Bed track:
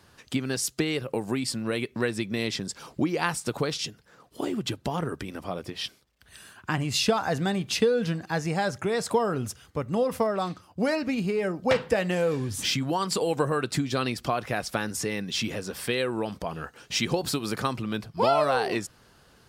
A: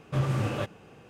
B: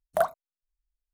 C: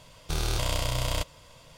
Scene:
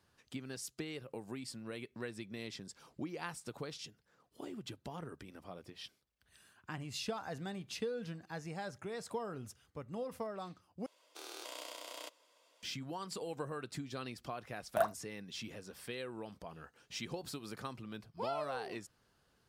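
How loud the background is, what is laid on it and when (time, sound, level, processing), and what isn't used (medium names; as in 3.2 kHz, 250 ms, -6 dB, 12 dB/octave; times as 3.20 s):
bed track -16 dB
10.86 s: replace with C -15 dB + steep high-pass 290 Hz 48 dB/octave
14.60 s: add B -7 dB
not used: A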